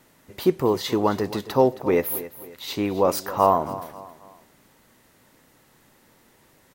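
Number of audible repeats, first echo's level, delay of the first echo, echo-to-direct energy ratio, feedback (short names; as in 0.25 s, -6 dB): 3, -15.5 dB, 0.269 s, -15.0 dB, 39%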